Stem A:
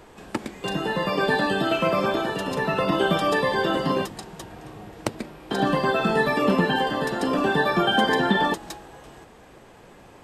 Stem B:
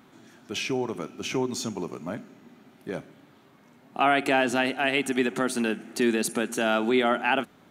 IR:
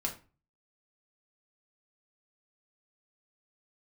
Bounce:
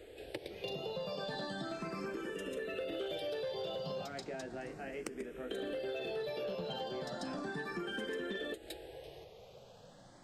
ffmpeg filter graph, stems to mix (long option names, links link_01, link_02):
-filter_complex "[0:a]asplit=2[link_01][link_02];[link_02]afreqshift=0.35[link_03];[link_01][link_03]amix=inputs=2:normalize=1,volume=-5.5dB[link_04];[1:a]lowpass=frequency=2000:width=0.5412,lowpass=frequency=2000:width=1.3066,flanger=delay=18:depth=2.5:speed=0.85,volume=-14dB[link_05];[link_04][link_05]amix=inputs=2:normalize=0,equalizer=frequency=250:width_type=o:width=1:gain=-4,equalizer=frequency=500:width_type=o:width=1:gain=9,equalizer=frequency=1000:width_type=o:width=1:gain=-10,equalizer=frequency=4000:width_type=o:width=1:gain=5,asoftclip=type=tanh:threshold=-21.5dB,acompressor=threshold=-39dB:ratio=4"